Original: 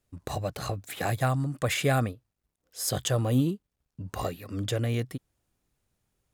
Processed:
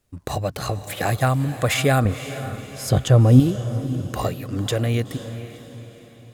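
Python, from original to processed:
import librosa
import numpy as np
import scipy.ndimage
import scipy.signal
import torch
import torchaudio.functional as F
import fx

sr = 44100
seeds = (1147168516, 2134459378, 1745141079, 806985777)

y = fx.tilt_eq(x, sr, slope=-2.5, at=(2.05, 3.4))
y = fx.echo_diffused(y, sr, ms=502, feedback_pct=45, wet_db=-12.0)
y = y * librosa.db_to_amplitude(6.5)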